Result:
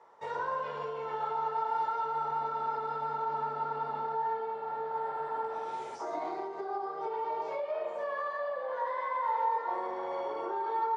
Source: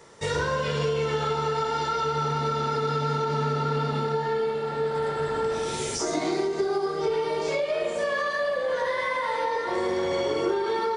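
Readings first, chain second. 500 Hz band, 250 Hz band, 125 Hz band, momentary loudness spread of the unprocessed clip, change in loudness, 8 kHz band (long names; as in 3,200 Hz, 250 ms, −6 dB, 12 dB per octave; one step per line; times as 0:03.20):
−11.5 dB, −17.0 dB, −24.5 dB, 2 LU, −7.5 dB, below −25 dB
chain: resonant band-pass 880 Hz, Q 2.8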